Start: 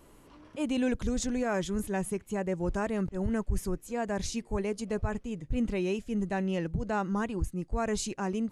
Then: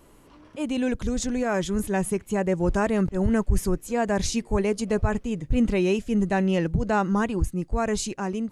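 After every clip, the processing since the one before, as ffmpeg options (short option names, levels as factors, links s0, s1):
-af "dynaudnorm=f=680:g=5:m=1.88,volume=1.33"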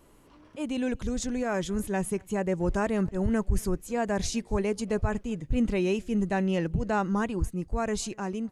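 -filter_complex "[0:a]asplit=2[s0][s1];[s1]adelay=239.1,volume=0.0355,highshelf=f=4000:g=-5.38[s2];[s0][s2]amix=inputs=2:normalize=0,volume=0.631"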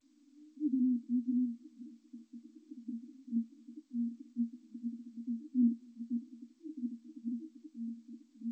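-af "asuperpass=centerf=270:order=20:qfactor=3.1" -ar 16000 -c:a g722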